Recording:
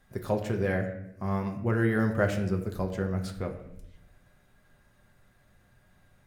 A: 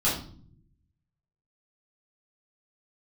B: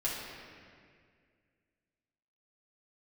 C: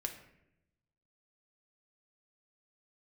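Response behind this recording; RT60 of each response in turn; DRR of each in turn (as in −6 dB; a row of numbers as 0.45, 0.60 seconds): C; 0.50, 2.0, 0.80 seconds; −9.0, −7.0, 3.0 decibels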